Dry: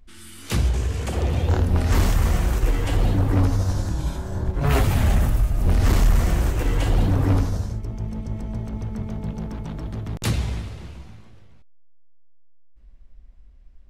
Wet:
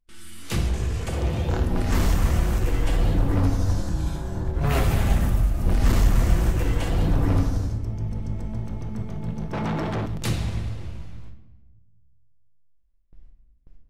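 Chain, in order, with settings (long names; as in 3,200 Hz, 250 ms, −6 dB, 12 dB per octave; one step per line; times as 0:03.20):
noise gate with hold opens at −36 dBFS
rectangular room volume 580 cubic metres, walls mixed, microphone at 0.75 metres
0:09.53–0:10.06: mid-hump overdrive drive 29 dB, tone 1,900 Hz, clips at −14.5 dBFS
level −3 dB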